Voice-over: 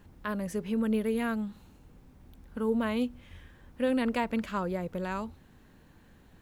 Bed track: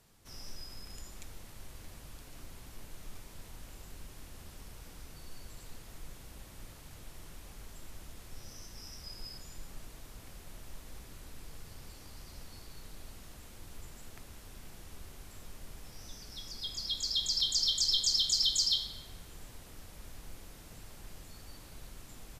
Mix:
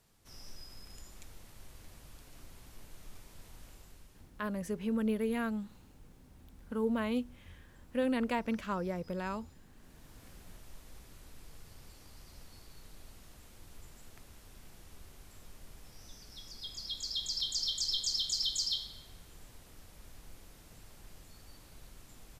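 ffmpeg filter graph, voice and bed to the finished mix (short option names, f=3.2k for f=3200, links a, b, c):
-filter_complex "[0:a]adelay=4150,volume=-3.5dB[a];[1:a]volume=8dB,afade=t=out:st=3.66:d=0.66:silence=0.237137,afade=t=in:st=9.74:d=0.5:silence=0.251189[b];[a][b]amix=inputs=2:normalize=0"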